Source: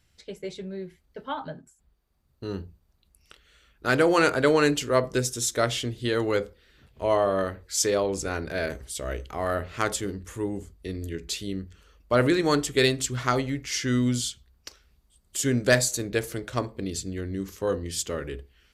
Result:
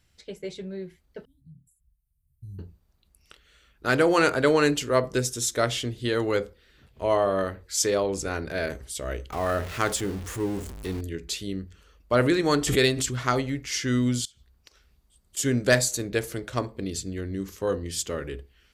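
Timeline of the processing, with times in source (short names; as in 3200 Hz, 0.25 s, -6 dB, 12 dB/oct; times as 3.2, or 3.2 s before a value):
1.25–2.59 elliptic band-stop 130–9500 Hz, stop band 70 dB
9.32–11.01 zero-crossing step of -34.5 dBFS
12.48–13.15 backwards sustainer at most 66 dB/s
14.25–15.37 compressor 20:1, threshold -48 dBFS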